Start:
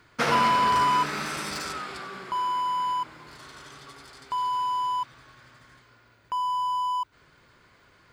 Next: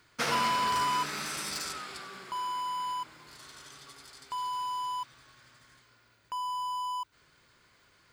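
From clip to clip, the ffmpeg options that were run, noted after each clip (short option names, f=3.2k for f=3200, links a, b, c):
-af "highshelf=f=3.3k:g=11,volume=-8dB"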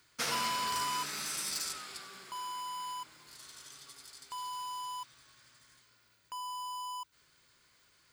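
-af "highshelf=f=3.7k:g=11.5,volume=-7.5dB"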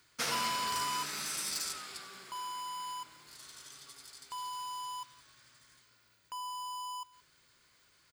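-af "aecho=1:1:173:0.0794"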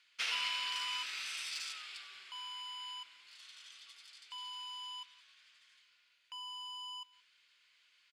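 -af "bandpass=f=2.8k:t=q:w=2.6:csg=0,volume=5.5dB"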